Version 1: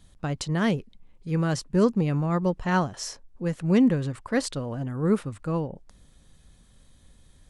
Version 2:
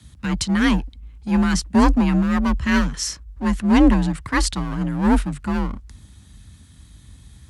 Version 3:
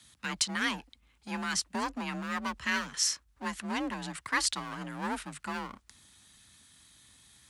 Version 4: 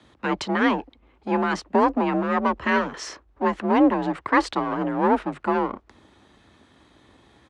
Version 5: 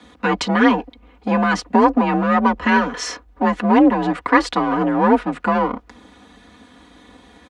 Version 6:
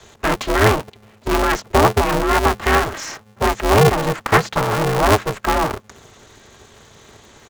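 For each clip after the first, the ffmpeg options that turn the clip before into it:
ffmpeg -i in.wav -filter_complex "[0:a]acrossover=split=300|1100|4800[link_01][link_02][link_03][link_04];[link_02]aeval=exprs='abs(val(0))':channel_layout=same[link_05];[link_01][link_05][link_03][link_04]amix=inputs=4:normalize=0,afreqshift=43,volume=9dB" out.wav
ffmpeg -i in.wav -af "acompressor=threshold=-17dB:ratio=6,highpass=frequency=1200:poles=1,volume=-2dB" out.wav
ffmpeg -i in.wav -af "firequalizer=gain_entry='entry(170,0);entry(350,14);entry(1500,-1);entry(4800,-14);entry(11000,-29)':delay=0.05:min_phase=1,volume=8dB" out.wav
ffmpeg -i in.wav -filter_complex "[0:a]aecho=1:1:4.1:0.83,asplit=2[link_01][link_02];[link_02]acompressor=threshold=-24dB:ratio=6,volume=1dB[link_03];[link_01][link_03]amix=inputs=2:normalize=0" out.wav
ffmpeg -i in.wav -filter_complex "[0:a]acrossover=split=3000[link_01][link_02];[link_02]acompressor=threshold=-43dB:ratio=4:attack=1:release=60[link_03];[link_01][link_03]amix=inputs=2:normalize=0,lowpass=frequency=6800:width_type=q:width=6.5,aeval=exprs='val(0)*sgn(sin(2*PI*160*n/s))':channel_layout=same" out.wav

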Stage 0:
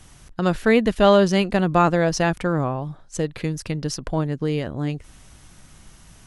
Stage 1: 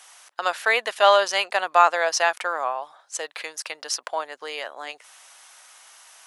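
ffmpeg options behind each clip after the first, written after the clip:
ffmpeg -i in.wav -af "highpass=frequency=690:width=0.5412,highpass=frequency=690:width=1.3066,volume=4dB" out.wav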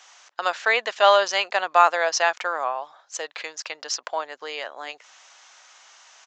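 ffmpeg -i in.wav -af "aresample=16000,aresample=44100" out.wav

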